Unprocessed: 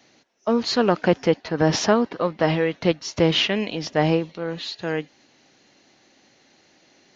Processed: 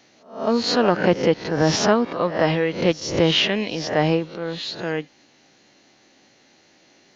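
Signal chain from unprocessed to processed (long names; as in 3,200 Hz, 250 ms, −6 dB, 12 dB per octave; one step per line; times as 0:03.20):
peak hold with a rise ahead of every peak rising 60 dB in 0.44 s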